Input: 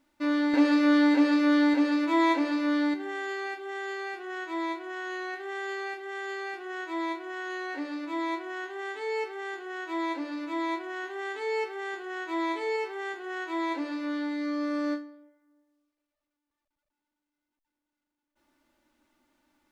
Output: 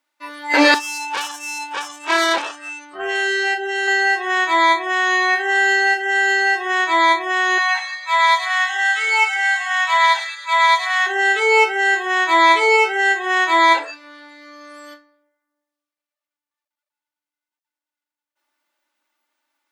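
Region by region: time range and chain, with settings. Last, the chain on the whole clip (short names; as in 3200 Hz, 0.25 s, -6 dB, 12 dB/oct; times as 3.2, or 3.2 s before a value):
0.74–3.88 low shelf 430 Hz +9.5 dB + tube stage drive 30 dB, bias 0.6
7.58–11.07 HPF 720 Hz 24 dB/oct + thin delay 0.106 s, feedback 63%, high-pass 2600 Hz, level -4 dB
whole clip: spectral noise reduction 23 dB; Bessel high-pass 920 Hz, order 2; maximiser +24 dB; gain -1 dB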